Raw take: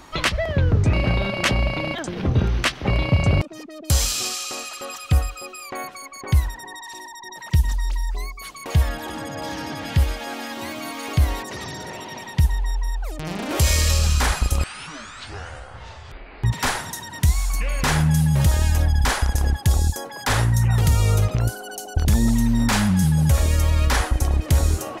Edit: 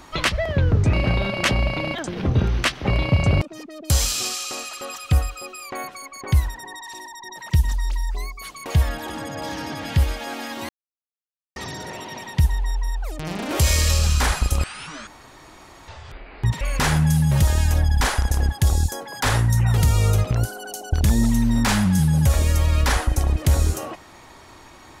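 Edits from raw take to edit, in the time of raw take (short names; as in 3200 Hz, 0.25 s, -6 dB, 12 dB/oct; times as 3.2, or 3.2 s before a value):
10.69–11.56 mute
15.07–15.88 room tone
16.61–17.65 cut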